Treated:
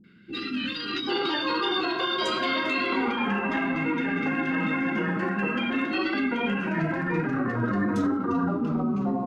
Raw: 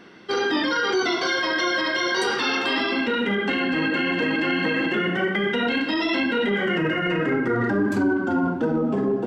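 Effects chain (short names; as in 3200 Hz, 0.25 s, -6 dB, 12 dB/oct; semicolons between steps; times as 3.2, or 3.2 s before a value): three bands offset in time lows, highs, mids 40/780 ms, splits 350/1900 Hz; formant shift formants -3 st; mismatched tape noise reduction decoder only; gain -1.5 dB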